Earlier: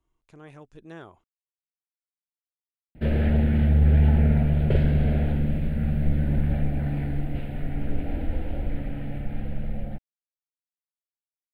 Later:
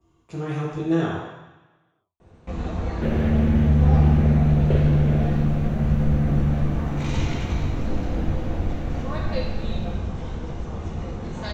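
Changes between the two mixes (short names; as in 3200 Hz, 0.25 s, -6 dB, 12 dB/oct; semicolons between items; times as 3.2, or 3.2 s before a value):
speech +4.5 dB; first sound: unmuted; reverb: on, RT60 1.1 s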